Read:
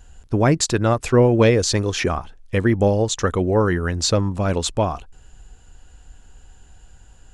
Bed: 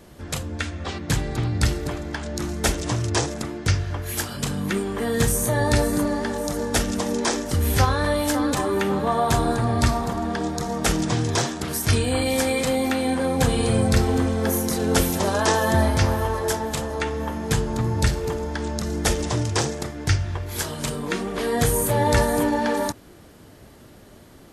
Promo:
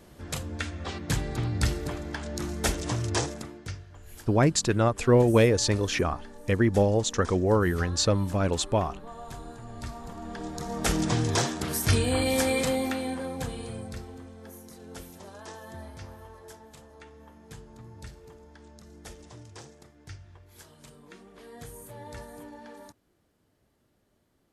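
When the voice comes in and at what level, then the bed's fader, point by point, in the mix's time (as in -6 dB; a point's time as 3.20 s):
3.95 s, -5.0 dB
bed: 3.24 s -5 dB
3.90 s -21.5 dB
9.66 s -21.5 dB
11.01 s -3 dB
12.61 s -3 dB
14.20 s -23.5 dB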